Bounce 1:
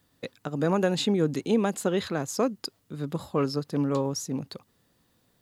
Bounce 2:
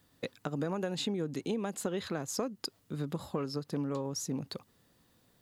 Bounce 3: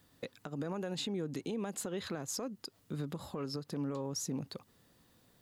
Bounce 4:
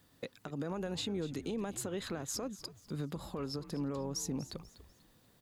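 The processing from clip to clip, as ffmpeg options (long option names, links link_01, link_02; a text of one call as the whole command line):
ffmpeg -i in.wav -af "acompressor=threshold=-31dB:ratio=6" out.wav
ffmpeg -i in.wav -af "alimiter=level_in=5.5dB:limit=-24dB:level=0:latency=1:release=149,volume=-5.5dB,volume=1dB" out.wav
ffmpeg -i in.wav -filter_complex "[0:a]asplit=4[link_01][link_02][link_03][link_04];[link_02]adelay=244,afreqshift=-100,volume=-15dB[link_05];[link_03]adelay=488,afreqshift=-200,volume=-24.6dB[link_06];[link_04]adelay=732,afreqshift=-300,volume=-34.3dB[link_07];[link_01][link_05][link_06][link_07]amix=inputs=4:normalize=0" out.wav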